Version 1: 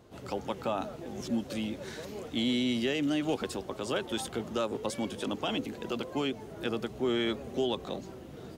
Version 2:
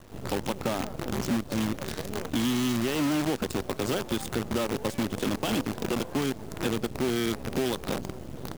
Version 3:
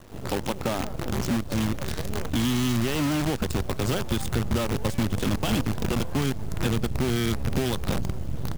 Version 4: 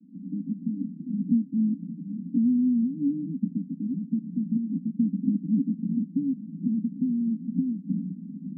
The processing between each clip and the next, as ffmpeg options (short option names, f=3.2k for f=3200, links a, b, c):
-af "lowshelf=f=330:g=11.5,acompressor=threshold=-28dB:ratio=4,acrusher=bits=6:dc=4:mix=0:aa=0.000001,volume=2.5dB"
-af "asubboost=boost=4:cutoff=150,volume=2dB"
-af "asuperpass=centerf=220:order=12:qfactor=1.8,volume=4.5dB"